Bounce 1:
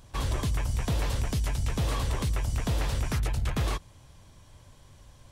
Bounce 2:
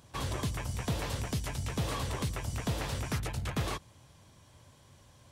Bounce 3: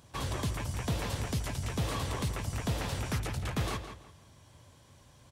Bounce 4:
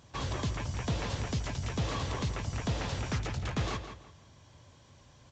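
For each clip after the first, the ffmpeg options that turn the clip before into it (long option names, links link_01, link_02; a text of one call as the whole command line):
ffmpeg -i in.wav -af "highpass=90,volume=-2dB" out.wav
ffmpeg -i in.wav -filter_complex "[0:a]asplit=2[link_01][link_02];[link_02]adelay=167,lowpass=frequency=4500:poles=1,volume=-9dB,asplit=2[link_03][link_04];[link_04]adelay=167,lowpass=frequency=4500:poles=1,volume=0.28,asplit=2[link_05][link_06];[link_06]adelay=167,lowpass=frequency=4500:poles=1,volume=0.28[link_07];[link_01][link_03][link_05][link_07]amix=inputs=4:normalize=0" out.wav
ffmpeg -i in.wav -ar 16000 -c:a pcm_alaw out.wav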